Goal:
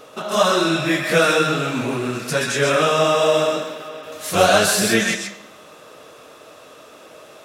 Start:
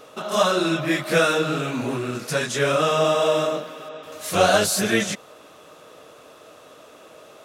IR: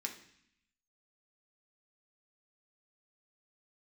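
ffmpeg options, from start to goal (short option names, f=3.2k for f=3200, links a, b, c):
-filter_complex "[0:a]asplit=2[a][b];[1:a]atrim=start_sample=2205,lowshelf=f=410:g=-11.5,adelay=129[c];[b][c]afir=irnorm=-1:irlink=0,volume=-2.5dB[d];[a][d]amix=inputs=2:normalize=0,volume=2.5dB"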